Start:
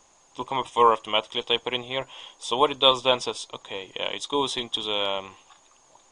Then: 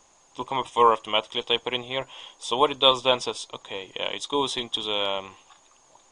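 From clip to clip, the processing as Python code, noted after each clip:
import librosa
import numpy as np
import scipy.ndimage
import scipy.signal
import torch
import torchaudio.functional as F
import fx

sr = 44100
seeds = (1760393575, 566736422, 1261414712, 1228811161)

y = x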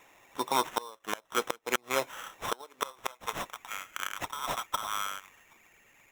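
y = fx.filter_sweep_highpass(x, sr, from_hz=210.0, to_hz=3800.0, start_s=2.31, end_s=4.11, q=0.75)
y = fx.gate_flip(y, sr, shuts_db=-13.0, range_db=-28)
y = fx.sample_hold(y, sr, seeds[0], rate_hz=4600.0, jitter_pct=0)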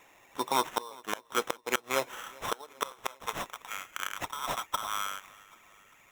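y = fx.echo_feedback(x, sr, ms=394, feedback_pct=56, wet_db=-23.5)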